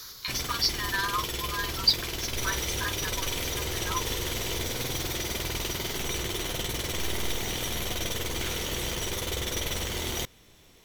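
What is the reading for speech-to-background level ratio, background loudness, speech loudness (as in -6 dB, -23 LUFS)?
-0.5 dB, -31.0 LUFS, -31.5 LUFS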